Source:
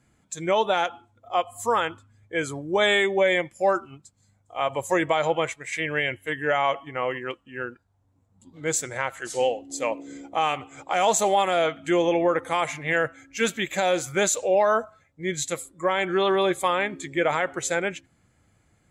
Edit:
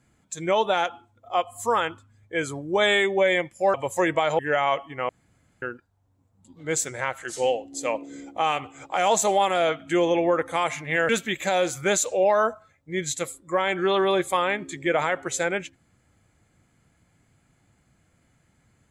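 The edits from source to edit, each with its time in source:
3.74–4.67 s: delete
5.32–6.36 s: delete
7.06–7.59 s: room tone
13.06–13.40 s: delete

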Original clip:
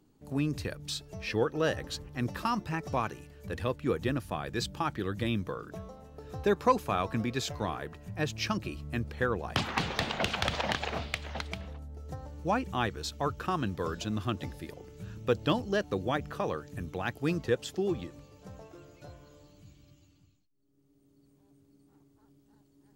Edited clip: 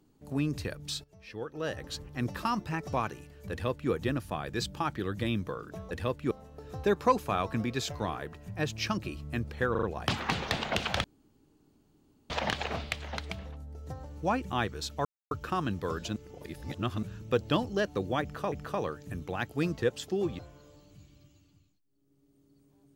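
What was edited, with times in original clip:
1.04–2.00 s: fade in quadratic, from -15 dB
3.51–3.91 s: copy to 5.91 s
9.31 s: stutter 0.04 s, 4 plays
10.52 s: insert room tone 1.26 s
13.27 s: insert silence 0.26 s
14.12–14.99 s: reverse
16.18–16.48 s: loop, 2 plays
18.05–19.06 s: delete

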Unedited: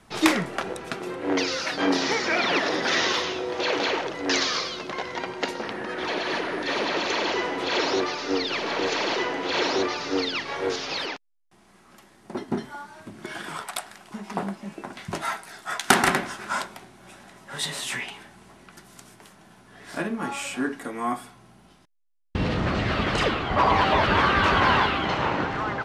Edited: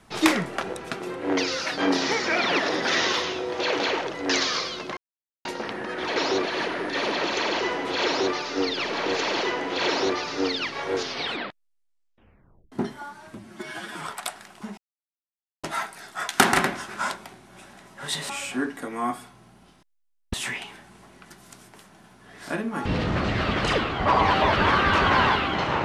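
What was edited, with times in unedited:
4.97–5.45 s: mute
7.78–8.05 s: copy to 6.16 s
10.75 s: tape stop 1.70 s
13.08–13.53 s: stretch 1.5×
14.28–15.14 s: mute
20.32–22.36 s: move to 17.80 s

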